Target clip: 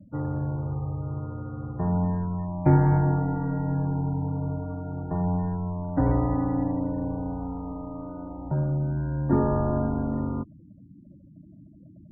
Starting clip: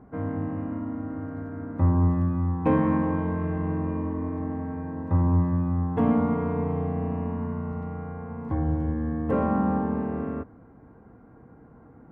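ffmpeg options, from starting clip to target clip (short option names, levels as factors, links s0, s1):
-af "equalizer=f=360:w=3.3:g=11.5,highpass=f=280:t=q:w=0.5412,highpass=f=280:t=q:w=1.307,lowpass=f=2300:t=q:w=0.5176,lowpass=f=2300:t=q:w=0.7071,lowpass=f=2300:t=q:w=1.932,afreqshift=-170,afftfilt=real='re*gte(hypot(re,im),0.00794)':imag='im*gte(hypot(re,im),0.00794)':win_size=1024:overlap=0.75,volume=1.19"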